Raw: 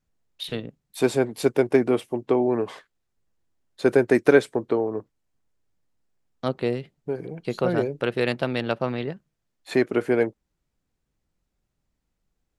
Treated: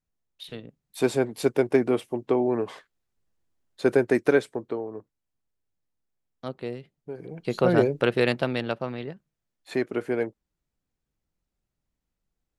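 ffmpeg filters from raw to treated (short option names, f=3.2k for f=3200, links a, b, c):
-af "volume=10.5dB,afade=t=in:st=0.61:d=0.42:silence=0.473151,afade=t=out:st=3.91:d=0.92:silence=0.473151,afade=t=in:st=7.14:d=0.69:silence=0.237137,afade=t=out:st=7.83:d=1.03:silence=0.334965"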